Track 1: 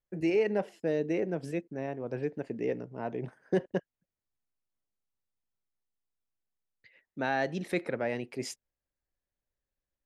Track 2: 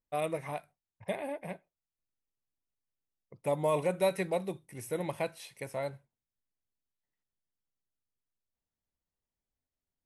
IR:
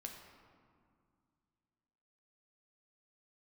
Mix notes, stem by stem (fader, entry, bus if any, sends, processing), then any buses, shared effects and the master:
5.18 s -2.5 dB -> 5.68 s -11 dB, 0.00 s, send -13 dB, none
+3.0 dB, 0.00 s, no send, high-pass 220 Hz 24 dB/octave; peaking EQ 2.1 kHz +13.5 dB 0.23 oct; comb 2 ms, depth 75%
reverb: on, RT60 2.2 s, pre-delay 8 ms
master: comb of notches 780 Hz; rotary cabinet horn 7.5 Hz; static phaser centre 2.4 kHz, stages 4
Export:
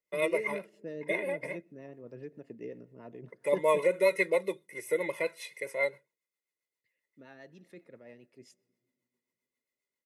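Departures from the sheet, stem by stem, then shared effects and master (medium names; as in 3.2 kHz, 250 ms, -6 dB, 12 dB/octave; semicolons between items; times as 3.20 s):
stem 1 -2.5 dB -> -9.5 dB; master: missing static phaser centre 2.4 kHz, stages 4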